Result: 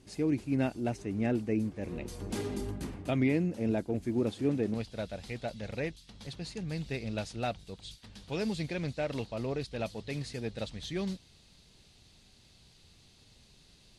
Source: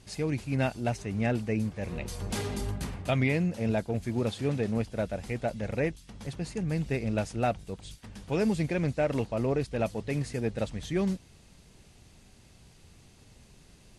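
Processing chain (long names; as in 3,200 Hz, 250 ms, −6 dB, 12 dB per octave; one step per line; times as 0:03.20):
parametric band 310 Hz +11.5 dB 0.91 octaves, from 0:04.74 4,000 Hz
level −6.5 dB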